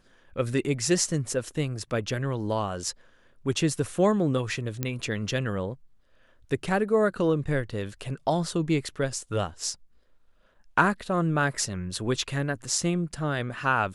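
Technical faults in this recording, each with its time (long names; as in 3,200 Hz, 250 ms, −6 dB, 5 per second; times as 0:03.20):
0:04.83: click −13 dBFS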